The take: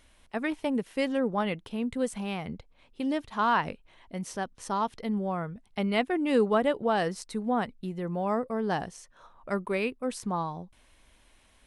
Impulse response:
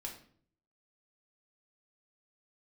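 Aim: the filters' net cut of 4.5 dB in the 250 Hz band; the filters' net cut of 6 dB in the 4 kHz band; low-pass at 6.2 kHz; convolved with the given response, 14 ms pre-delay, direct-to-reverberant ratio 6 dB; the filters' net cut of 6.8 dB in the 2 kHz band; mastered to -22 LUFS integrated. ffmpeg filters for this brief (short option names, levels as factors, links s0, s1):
-filter_complex "[0:a]lowpass=6200,equalizer=f=250:t=o:g=-5.5,equalizer=f=2000:t=o:g=-8,equalizer=f=4000:t=o:g=-4,asplit=2[s0][s1];[1:a]atrim=start_sample=2205,adelay=14[s2];[s1][s2]afir=irnorm=-1:irlink=0,volume=0.631[s3];[s0][s3]amix=inputs=2:normalize=0,volume=3.16"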